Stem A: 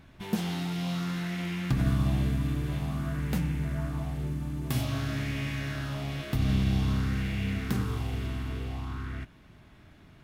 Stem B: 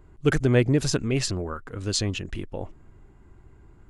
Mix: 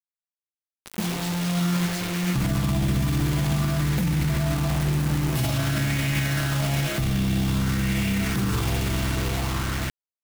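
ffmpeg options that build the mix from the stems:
-filter_complex "[0:a]aecho=1:1:5.9:0.53,acontrast=86,adelay=650,volume=2.5dB[a];[1:a]asoftclip=type=tanh:threshold=-14.5dB,volume=-17dB,asplit=2[b][c];[c]apad=whole_len=480308[d];[a][d]sidechaincompress=threshold=-50dB:ratio=12:attack=12:release=202[e];[e][b]amix=inputs=2:normalize=0,acrusher=bits=4:mix=0:aa=0.000001,alimiter=limit=-17dB:level=0:latency=1:release=12"

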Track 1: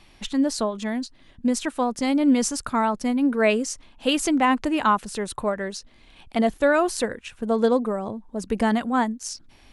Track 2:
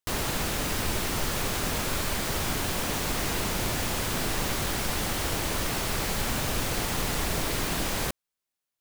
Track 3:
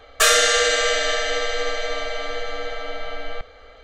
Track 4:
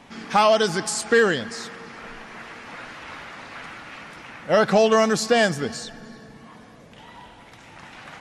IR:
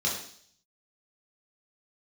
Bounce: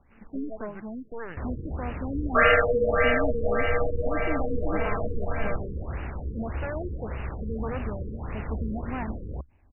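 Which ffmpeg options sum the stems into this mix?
-filter_complex "[0:a]highshelf=f=2.2k:g=-10,aeval=exprs='0.133*(abs(mod(val(0)/0.133+3,4)-2)-1)':c=same,volume=-10.5dB[a];[1:a]adelay=1300,volume=-7.5dB[b];[2:a]adelay=2150,volume=0dB[c];[3:a]aeval=exprs='max(val(0),0)':c=same,volume=-15dB[d];[a][b][c][d]amix=inputs=4:normalize=0,equalizer=f=69:t=o:w=0.94:g=14.5,afftfilt=real='re*lt(b*sr/1024,500*pow(3000/500,0.5+0.5*sin(2*PI*1.7*pts/sr)))':imag='im*lt(b*sr/1024,500*pow(3000/500,0.5+0.5*sin(2*PI*1.7*pts/sr)))':win_size=1024:overlap=0.75"

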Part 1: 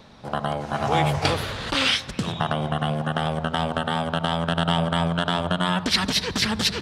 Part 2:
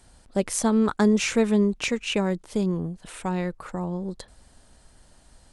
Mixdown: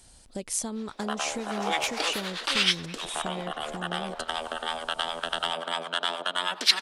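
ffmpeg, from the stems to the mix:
-filter_complex "[0:a]highpass=f=310:w=0.5412,highpass=f=310:w=1.3066,acrossover=split=700[a][b];[a]aeval=exprs='val(0)*(1-0.7/2+0.7/2*cos(2*PI*9.5*n/s))':c=same[c];[b]aeval=exprs='val(0)*(1-0.7/2-0.7/2*cos(2*PI*9.5*n/s))':c=same[d];[c][d]amix=inputs=2:normalize=0,adelay=750,volume=-1.5dB[e];[1:a]equalizer=f=1.5k:w=0.96:g=-5.5,acompressor=threshold=-33dB:ratio=3,volume=1.5dB[f];[e][f]amix=inputs=2:normalize=0,tiltshelf=f=1.3k:g=-4.5"

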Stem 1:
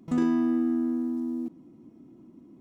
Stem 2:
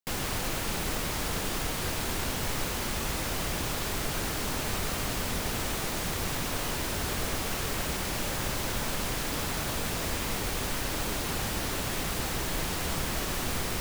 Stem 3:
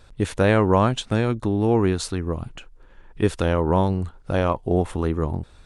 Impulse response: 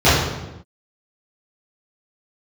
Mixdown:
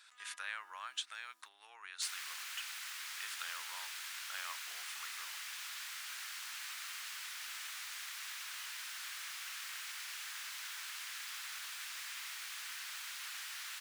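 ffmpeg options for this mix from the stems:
-filter_complex "[0:a]alimiter=limit=-21dB:level=0:latency=1,volume=-4.5dB[a];[1:a]highshelf=f=8.6k:g=-6.5,adelay=1950,volume=-8dB[b];[2:a]acompressor=threshold=-30dB:ratio=3,volume=-1.5dB,asplit=2[c][d];[d]apad=whole_len=114706[e];[a][e]sidechaingate=range=-11dB:threshold=-40dB:ratio=16:detection=peak[f];[f][b][c]amix=inputs=3:normalize=0,highpass=f=1.4k:w=0.5412,highpass=f=1.4k:w=1.3066"

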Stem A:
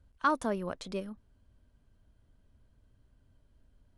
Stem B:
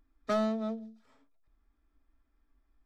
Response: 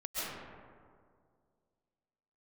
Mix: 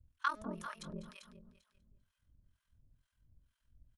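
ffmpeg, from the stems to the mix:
-filter_complex "[0:a]equalizer=f=430:t=o:w=1.7:g=-12.5,bandreject=f=4.5k:w=13,aeval=exprs='val(0)*sin(2*PI*21*n/s)':c=same,volume=1.5dB,asplit=3[a][b][c];[b]volume=-4.5dB[d];[1:a]adelay=50,volume=-12.5dB[e];[c]apad=whole_len=128175[f];[e][f]sidechaincompress=threshold=-47dB:ratio=6:attack=12:release=103[g];[d]aecho=0:1:197|394|591|788|985|1182:1|0.41|0.168|0.0689|0.0283|0.0116[h];[a][g][h]amix=inputs=3:normalize=0,equalizer=f=760:t=o:w=0.38:g=-7,acrossover=split=750[i][j];[i]aeval=exprs='val(0)*(1-1/2+1/2*cos(2*PI*2.1*n/s))':c=same[k];[j]aeval=exprs='val(0)*(1-1/2-1/2*cos(2*PI*2.1*n/s))':c=same[l];[k][l]amix=inputs=2:normalize=0"

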